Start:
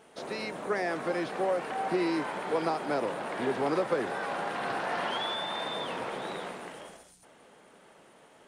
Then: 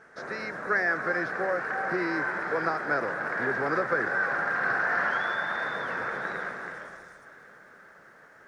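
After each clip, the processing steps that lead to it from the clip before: EQ curve 120 Hz 0 dB, 270 Hz -6 dB, 500 Hz -3 dB, 930 Hz -5 dB, 1600 Hz +12 dB, 3000 Hz -15 dB, 5500 Hz -3 dB, 9500 Hz -16 dB; lo-fi delay 0.342 s, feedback 55%, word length 11-bit, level -14 dB; gain +2.5 dB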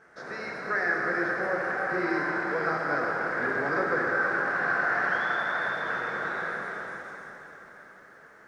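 plate-style reverb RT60 3.6 s, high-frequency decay 0.85×, DRR -1.5 dB; gain -3.5 dB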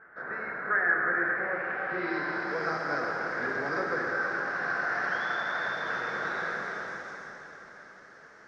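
low-pass sweep 1600 Hz -> 5600 Hz, 1.12–2.63; vocal rider within 4 dB 2 s; gain -4.5 dB

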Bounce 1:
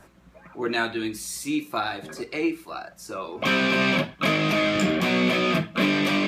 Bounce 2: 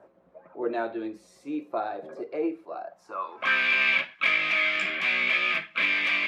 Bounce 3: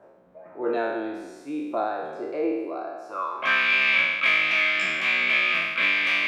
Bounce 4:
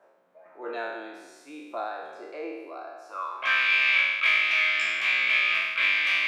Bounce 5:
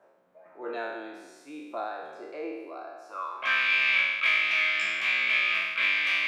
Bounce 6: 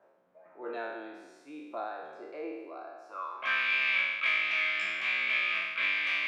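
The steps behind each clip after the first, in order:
band-pass sweep 550 Hz -> 2200 Hz, 2.77–3.66; gain +4.5 dB
spectral trails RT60 1.29 s
HPF 1300 Hz 6 dB/oct
low shelf 220 Hz +9 dB; gain -2 dB
LPF 4000 Hz 6 dB/oct; gain -3 dB

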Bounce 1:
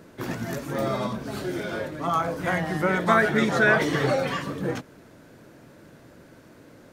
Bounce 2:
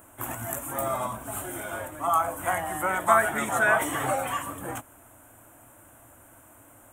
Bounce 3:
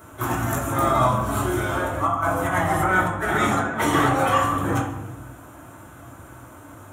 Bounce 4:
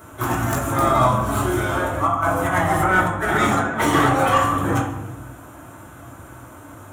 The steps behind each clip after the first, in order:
EQ curve 110 Hz 0 dB, 160 Hz -17 dB, 290 Hz -5 dB, 440 Hz -13 dB, 720 Hz +4 dB, 1200 Hz +3 dB, 1800 Hz -4 dB, 3100 Hz -2 dB, 4700 Hz -22 dB, 8000 Hz +15 dB; gain -1 dB
negative-ratio compressor -28 dBFS, ratio -0.5; reverb RT60 1.1 s, pre-delay 3 ms, DRR -6 dB; gain +2 dB
tracing distortion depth 0.057 ms; gain +2.5 dB

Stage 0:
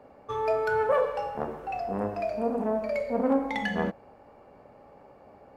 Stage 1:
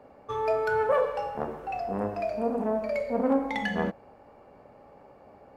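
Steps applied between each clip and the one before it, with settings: nothing audible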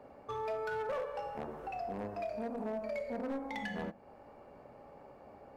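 compressor 2:1, threshold -39 dBFS, peak gain reduction 11 dB; overloaded stage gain 30 dB; on a send at -17 dB: reverb RT60 0.25 s, pre-delay 3 ms; on the sum: gain -2 dB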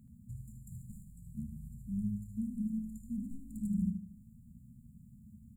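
brick-wall FIR band-stop 240–6900 Hz; feedback echo 77 ms, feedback 37%, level -7.5 dB; gain +9.5 dB

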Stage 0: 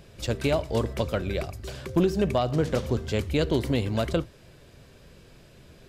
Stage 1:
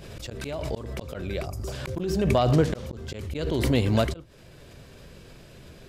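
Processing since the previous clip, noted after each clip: spectral gain 1.46–1.72, 1400–4600 Hz -11 dB; auto swell 0.469 s; backwards sustainer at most 31 dB/s; gain +3.5 dB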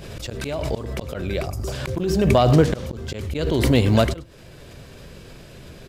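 short-mantissa float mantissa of 6-bit; echo 99 ms -20.5 dB; gain +5.5 dB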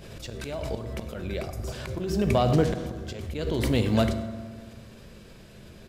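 reverb RT60 1.8 s, pre-delay 5 ms, DRR 9 dB; gain -7 dB

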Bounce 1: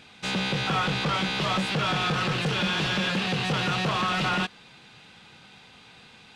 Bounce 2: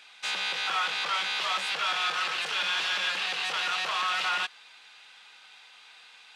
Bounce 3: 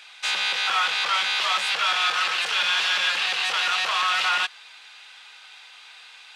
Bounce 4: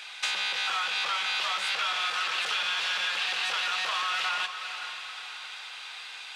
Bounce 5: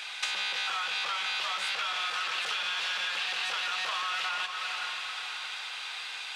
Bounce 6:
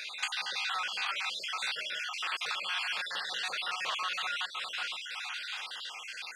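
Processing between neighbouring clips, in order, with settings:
HPF 1000 Hz 12 dB/oct
low shelf 410 Hz -10 dB; gain +6.5 dB
compressor 10:1, threshold -31 dBFS, peak gain reduction 12.5 dB; on a send: diffused feedback echo 0.475 s, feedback 47%, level -9 dB; on the sum: gain +4 dB
compressor, threshold -32 dBFS, peak gain reduction 7 dB; gain +3 dB
random spectral dropouts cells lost 43%

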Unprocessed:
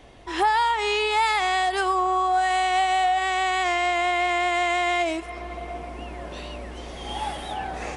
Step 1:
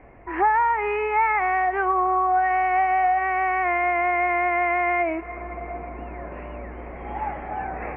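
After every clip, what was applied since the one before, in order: elliptic low-pass 2300 Hz, stop band 40 dB; gain +1.5 dB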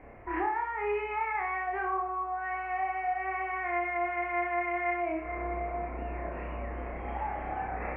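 compressor 3:1, threshold -30 dBFS, peak gain reduction 11 dB; flutter echo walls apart 5.4 m, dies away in 0.51 s; gain -3.5 dB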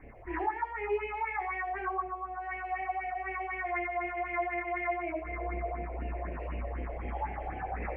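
phaser stages 4, 4 Hz, lowest notch 190–1300 Hz; gain +1.5 dB

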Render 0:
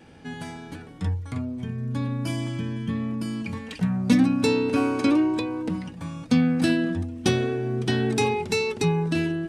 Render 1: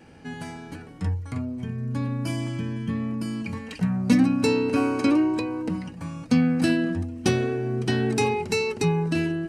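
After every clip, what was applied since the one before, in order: notch 3500 Hz, Q 6.2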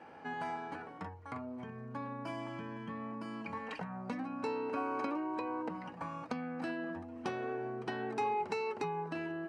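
compressor 4:1, threshold -31 dBFS, peak gain reduction 14.5 dB; band-pass 940 Hz, Q 1.5; gain +5.5 dB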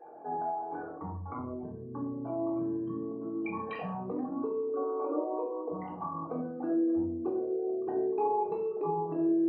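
formant sharpening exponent 3; reverb RT60 0.55 s, pre-delay 3 ms, DRR -3 dB; gain -1 dB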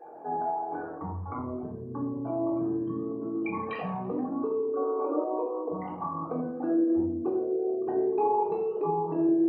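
warbling echo 84 ms, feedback 52%, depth 154 cents, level -15.5 dB; gain +3.5 dB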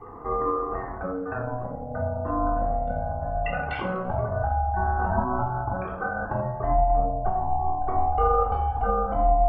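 ring modulator 370 Hz; gain +7.5 dB

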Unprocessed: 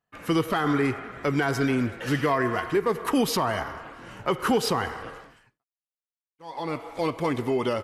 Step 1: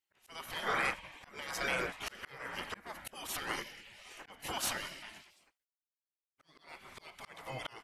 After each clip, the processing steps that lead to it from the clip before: spectral gate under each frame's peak -15 dB weak; auto swell 0.505 s; gain +1.5 dB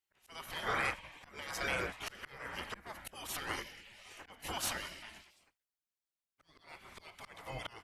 octaver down 2 oct, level -3 dB; gain -1.5 dB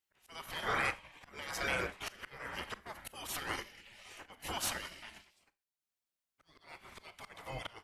transient shaper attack -1 dB, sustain -6 dB; Schroeder reverb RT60 0.3 s, combs from 29 ms, DRR 17 dB; gain +1 dB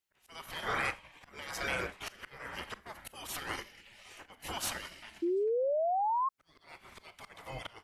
painted sound rise, 5.22–6.29, 330–1100 Hz -30 dBFS

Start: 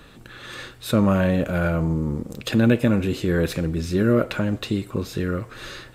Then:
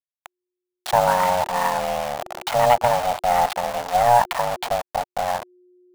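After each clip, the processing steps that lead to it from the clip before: level-crossing sampler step -24 dBFS; ring modulator 360 Hz; resonant low shelf 520 Hz -12.5 dB, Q 3; gain +5 dB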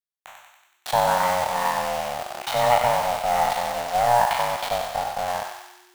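spectral trails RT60 0.77 s; on a send: thinning echo 94 ms, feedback 66%, high-pass 960 Hz, level -5 dB; on the sum: gain -4.5 dB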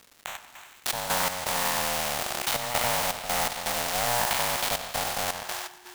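step gate "xx.xx.x.xxxx" 82 bpm -12 dB; crackle 400/s -51 dBFS; spectral compressor 2:1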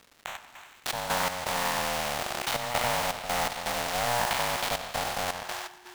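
high shelf 5900 Hz -8 dB

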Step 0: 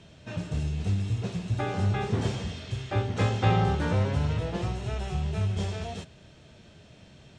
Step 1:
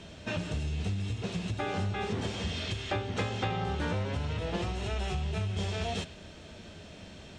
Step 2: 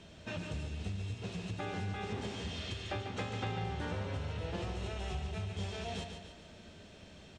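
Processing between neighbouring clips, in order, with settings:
dynamic EQ 3000 Hz, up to +4 dB, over -53 dBFS, Q 1; compressor 6:1, threshold -34 dBFS, peak gain reduction 15.5 dB; bell 130 Hz -14 dB 0.28 oct; gain +6 dB
feedback echo 0.144 s, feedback 48%, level -7 dB; gain -7 dB

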